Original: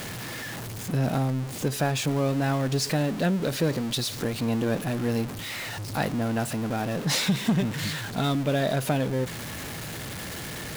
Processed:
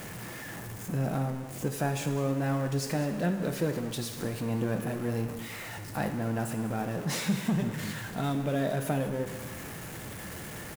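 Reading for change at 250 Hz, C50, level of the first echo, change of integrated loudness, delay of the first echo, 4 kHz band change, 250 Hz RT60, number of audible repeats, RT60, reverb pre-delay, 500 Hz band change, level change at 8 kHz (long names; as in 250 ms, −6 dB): −4.0 dB, 8.0 dB, −16.0 dB, −4.5 dB, 199 ms, −10.5 dB, 1.0 s, 1, 1.1 s, 4 ms, −4.0 dB, −6.0 dB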